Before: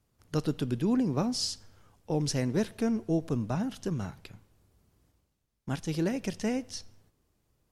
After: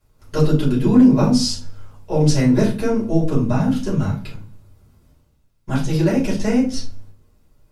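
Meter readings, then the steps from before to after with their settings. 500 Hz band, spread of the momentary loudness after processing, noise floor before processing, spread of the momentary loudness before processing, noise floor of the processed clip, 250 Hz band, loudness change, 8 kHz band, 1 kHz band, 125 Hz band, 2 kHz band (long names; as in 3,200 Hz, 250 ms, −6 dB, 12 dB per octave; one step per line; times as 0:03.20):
+12.0 dB, 13 LU, −76 dBFS, 12 LU, −59 dBFS, +13.5 dB, +13.0 dB, +8.5 dB, +11.0 dB, +14.0 dB, +10.5 dB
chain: rectangular room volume 170 cubic metres, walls furnished, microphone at 5.3 metres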